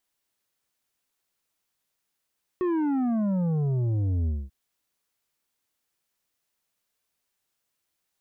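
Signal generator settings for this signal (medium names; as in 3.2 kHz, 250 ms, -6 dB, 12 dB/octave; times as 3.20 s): sub drop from 370 Hz, over 1.89 s, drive 8 dB, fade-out 0.23 s, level -23.5 dB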